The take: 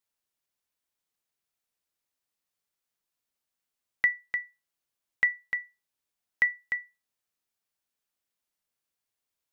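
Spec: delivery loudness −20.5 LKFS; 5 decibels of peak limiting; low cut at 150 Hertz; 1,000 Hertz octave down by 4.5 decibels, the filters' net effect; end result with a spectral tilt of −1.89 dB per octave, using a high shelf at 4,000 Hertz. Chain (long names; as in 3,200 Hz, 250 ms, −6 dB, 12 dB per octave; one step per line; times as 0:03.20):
high-pass filter 150 Hz
parametric band 1,000 Hz −7 dB
high-shelf EQ 4,000 Hz +7.5 dB
level +11 dB
brickwall limiter −7 dBFS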